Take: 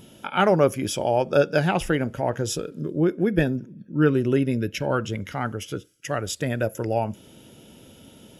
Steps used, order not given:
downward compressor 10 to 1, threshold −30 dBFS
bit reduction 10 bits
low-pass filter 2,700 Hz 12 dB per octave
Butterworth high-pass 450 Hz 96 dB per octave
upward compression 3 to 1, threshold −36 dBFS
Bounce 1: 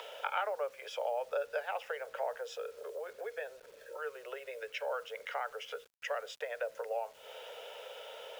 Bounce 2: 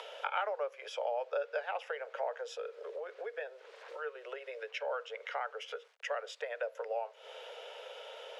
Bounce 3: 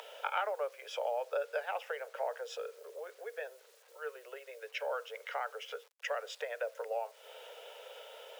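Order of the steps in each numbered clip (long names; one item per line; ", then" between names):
downward compressor, then Butterworth high-pass, then upward compression, then low-pass filter, then bit reduction
downward compressor, then bit reduction, then Butterworth high-pass, then upward compression, then low-pass filter
low-pass filter, then downward compressor, then upward compression, then bit reduction, then Butterworth high-pass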